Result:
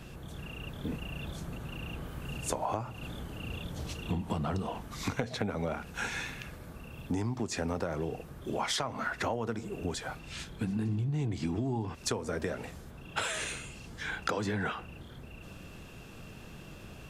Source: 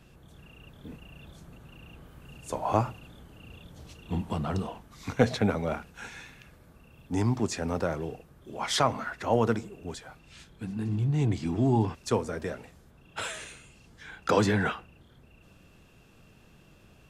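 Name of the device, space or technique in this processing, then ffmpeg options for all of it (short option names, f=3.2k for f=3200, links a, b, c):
serial compression, leveller first: -af "acompressor=threshold=-29dB:ratio=2.5,acompressor=threshold=-39dB:ratio=6,volume=9dB"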